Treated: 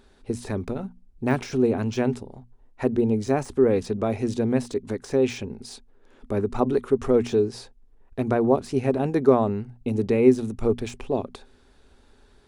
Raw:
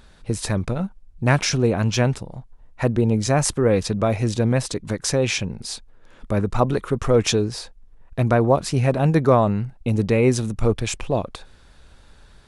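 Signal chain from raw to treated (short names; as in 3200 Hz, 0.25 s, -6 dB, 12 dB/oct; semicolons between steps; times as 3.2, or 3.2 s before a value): notches 60/120/180/240 Hz; de-esser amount 60%; thirty-one-band EQ 160 Hz -6 dB, 250 Hz +11 dB, 400 Hz +12 dB, 800 Hz +4 dB; gain -7.5 dB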